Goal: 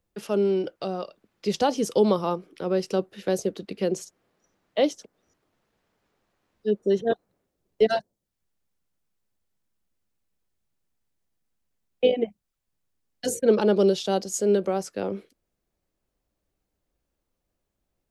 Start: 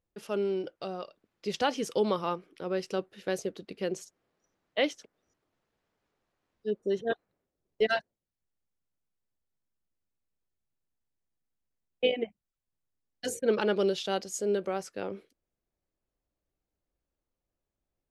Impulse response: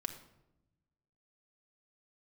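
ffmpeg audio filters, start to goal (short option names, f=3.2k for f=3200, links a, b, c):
-filter_complex "[0:a]equalizer=f=200:t=o:w=0.26:g=3,acrossover=split=240|1100|3700[a][b][c][d];[c]acompressor=threshold=-52dB:ratio=6[e];[a][b][e][d]amix=inputs=4:normalize=0,volume=7dB"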